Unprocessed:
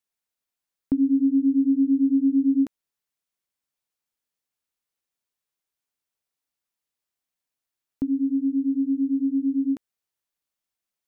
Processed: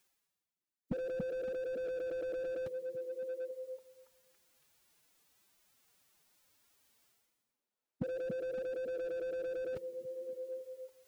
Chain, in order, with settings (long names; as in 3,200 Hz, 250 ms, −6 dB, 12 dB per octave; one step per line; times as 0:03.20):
reversed playback
upward compression, threshold −40 dBFS
reversed playback
phase-vocoder pitch shift with formants kept +11 semitones
echo through a band-pass that steps 280 ms, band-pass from 160 Hz, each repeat 0.7 octaves, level −7 dB
slew-rate limiting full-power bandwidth 16 Hz
level −6.5 dB